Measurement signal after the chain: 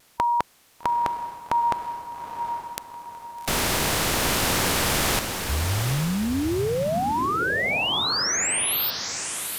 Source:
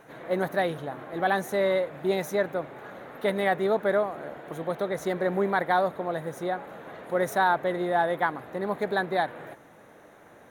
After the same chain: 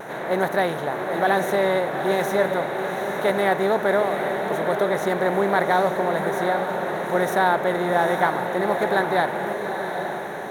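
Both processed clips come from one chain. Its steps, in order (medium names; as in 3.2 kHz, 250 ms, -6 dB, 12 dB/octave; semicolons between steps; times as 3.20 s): spectral levelling over time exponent 0.6; vibrato 0.38 Hz 10 cents; echo that smears into a reverb 821 ms, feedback 44%, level -6.5 dB; trim +1 dB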